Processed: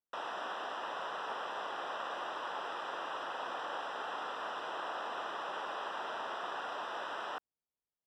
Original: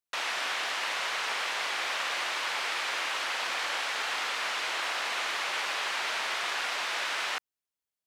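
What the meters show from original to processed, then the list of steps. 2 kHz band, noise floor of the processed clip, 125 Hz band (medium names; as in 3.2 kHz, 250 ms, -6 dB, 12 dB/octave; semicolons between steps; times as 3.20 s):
-13.0 dB, under -85 dBFS, no reading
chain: boxcar filter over 20 samples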